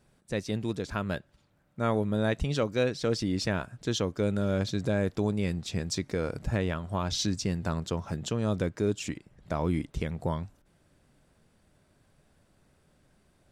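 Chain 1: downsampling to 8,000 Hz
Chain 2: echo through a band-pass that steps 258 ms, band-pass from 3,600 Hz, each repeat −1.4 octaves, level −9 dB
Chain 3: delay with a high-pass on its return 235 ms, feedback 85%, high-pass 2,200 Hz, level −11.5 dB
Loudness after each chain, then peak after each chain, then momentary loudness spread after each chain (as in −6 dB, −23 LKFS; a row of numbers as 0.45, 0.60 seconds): −31.0, −30.5, −30.5 LKFS; −15.5, −15.5, −16.0 dBFS; 7, 8, 7 LU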